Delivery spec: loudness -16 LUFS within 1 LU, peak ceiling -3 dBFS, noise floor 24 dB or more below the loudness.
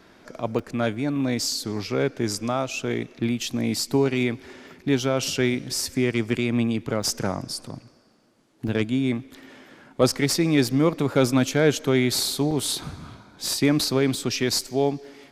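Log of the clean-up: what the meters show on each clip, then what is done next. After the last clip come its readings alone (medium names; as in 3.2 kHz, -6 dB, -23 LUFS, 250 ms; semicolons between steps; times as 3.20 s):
dropouts 6; longest dropout 3.8 ms; loudness -24.0 LUFS; peak level -6.0 dBFS; loudness target -16.0 LUFS
-> interpolate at 0.59/7.03/8.68/10.68/12.51/14.61 s, 3.8 ms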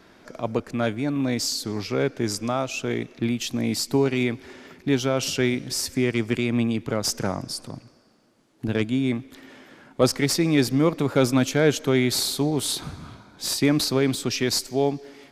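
dropouts 0; loudness -24.0 LUFS; peak level -6.0 dBFS; loudness target -16.0 LUFS
-> trim +8 dB; peak limiter -3 dBFS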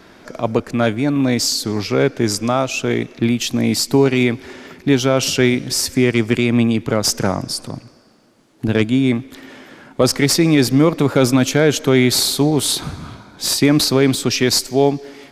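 loudness -16.5 LUFS; peak level -3.0 dBFS; noise floor -48 dBFS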